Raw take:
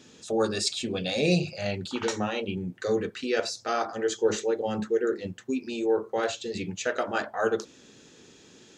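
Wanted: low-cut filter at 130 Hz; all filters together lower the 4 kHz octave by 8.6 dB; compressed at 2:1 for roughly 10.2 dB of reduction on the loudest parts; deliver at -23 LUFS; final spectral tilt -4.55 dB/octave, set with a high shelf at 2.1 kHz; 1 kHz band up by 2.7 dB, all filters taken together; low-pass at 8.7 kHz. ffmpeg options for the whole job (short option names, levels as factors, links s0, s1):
-af "highpass=130,lowpass=8700,equalizer=f=1000:t=o:g=6,highshelf=f=2100:g=-7.5,equalizer=f=4000:t=o:g=-3.5,acompressor=threshold=0.0126:ratio=2,volume=5.01"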